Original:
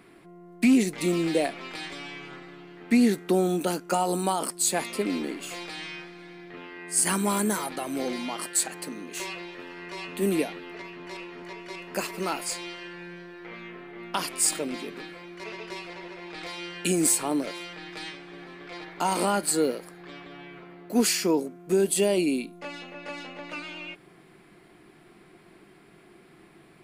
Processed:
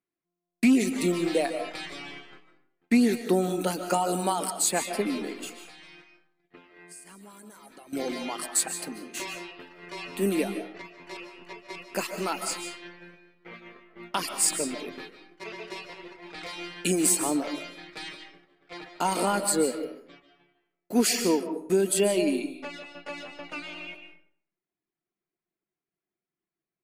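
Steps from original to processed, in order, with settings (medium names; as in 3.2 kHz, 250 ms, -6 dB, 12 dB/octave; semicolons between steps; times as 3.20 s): reverb removal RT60 0.64 s; gate -42 dBFS, range -38 dB; 5.49–7.93 s: compression 10:1, threshold -47 dBFS, peak gain reduction 27 dB; algorithmic reverb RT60 0.59 s, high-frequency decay 0.7×, pre-delay 105 ms, DRR 7.5 dB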